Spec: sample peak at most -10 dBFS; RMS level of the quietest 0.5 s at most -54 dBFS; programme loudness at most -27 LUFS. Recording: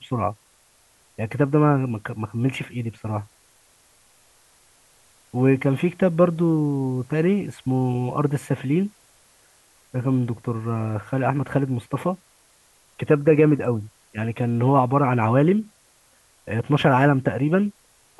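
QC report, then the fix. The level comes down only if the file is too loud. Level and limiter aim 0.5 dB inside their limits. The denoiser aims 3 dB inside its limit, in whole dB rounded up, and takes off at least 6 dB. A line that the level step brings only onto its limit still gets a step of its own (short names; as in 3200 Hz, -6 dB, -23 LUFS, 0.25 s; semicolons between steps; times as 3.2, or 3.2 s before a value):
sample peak -5.0 dBFS: fail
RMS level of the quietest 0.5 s -59 dBFS: OK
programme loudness -22.0 LUFS: fail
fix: gain -5.5 dB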